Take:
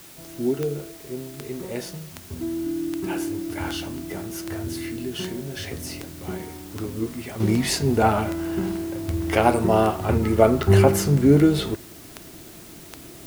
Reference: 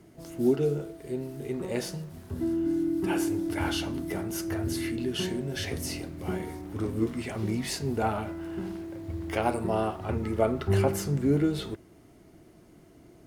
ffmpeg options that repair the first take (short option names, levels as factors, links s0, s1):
-af "adeclick=t=4,afwtdn=0.005,asetnsamples=n=441:p=0,asendcmd='7.4 volume volume -9dB',volume=1"